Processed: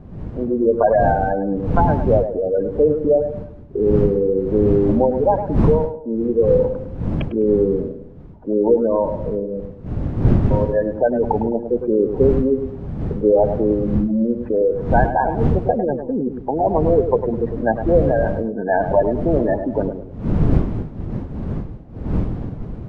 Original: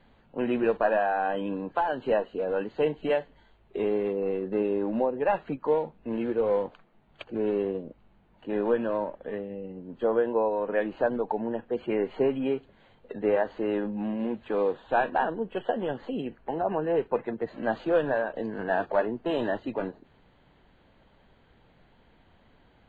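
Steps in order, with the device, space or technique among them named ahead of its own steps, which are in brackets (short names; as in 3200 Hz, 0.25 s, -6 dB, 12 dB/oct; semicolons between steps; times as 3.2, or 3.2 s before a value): Wiener smoothing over 15 samples; spectral gate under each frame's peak -15 dB strong; 9.6–10.51 steep high-pass 2200 Hz; tape echo 0.104 s, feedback 45%, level -6.5 dB, low-pass 1000 Hz; smartphone video outdoors (wind noise 170 Hz -32 dBFS; AGC gain up to 11 dB; AAC 96 kbps 24000 Hz)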